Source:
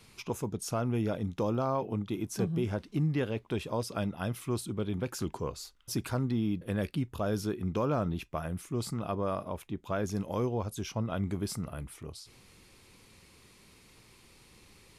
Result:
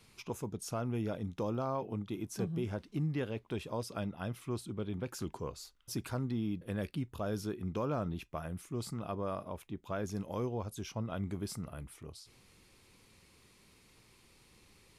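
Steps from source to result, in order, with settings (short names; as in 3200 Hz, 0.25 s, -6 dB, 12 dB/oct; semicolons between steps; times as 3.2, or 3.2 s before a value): 4–5.08 high shelf 6900 Hz -6.5 dB; gain -5 dB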